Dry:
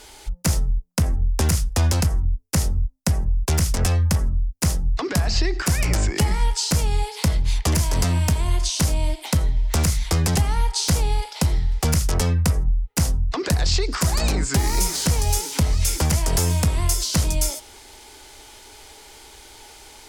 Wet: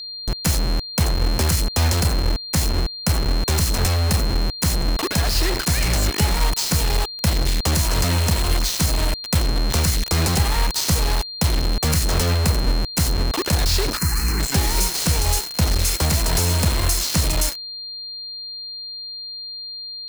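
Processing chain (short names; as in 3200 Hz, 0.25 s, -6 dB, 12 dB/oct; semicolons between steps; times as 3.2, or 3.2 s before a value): bit-crush 4-bit; 13.97–14.4 fixed phaser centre 1500 Hz, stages 4; whine 4200 Hz -30 dBFS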